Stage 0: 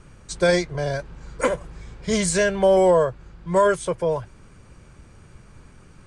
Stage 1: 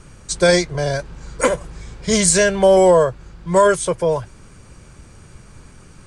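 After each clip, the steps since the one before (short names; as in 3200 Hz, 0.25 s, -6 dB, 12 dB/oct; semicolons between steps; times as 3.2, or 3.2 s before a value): tone controls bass 0 dB, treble +6 dB; gain +4.5 dB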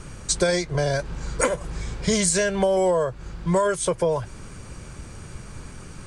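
compressor 6:1, threshold -23 dBFS, peak gain reduction 13.5 dB; gain +4 dB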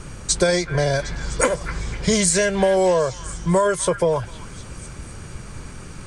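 delay with a stepping band-pass 0.253 s, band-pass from 1700 Hz, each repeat 0.7 oct, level -7.5 dB; gain +3 dB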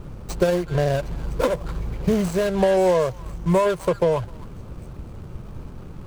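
median filter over 25 samples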